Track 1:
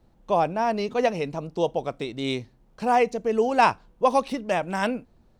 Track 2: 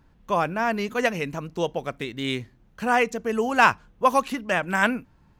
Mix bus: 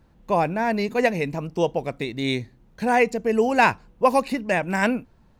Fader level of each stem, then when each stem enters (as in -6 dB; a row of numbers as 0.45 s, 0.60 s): -0.5 dB, -2.0 dB; 0.00 s, 0.00 s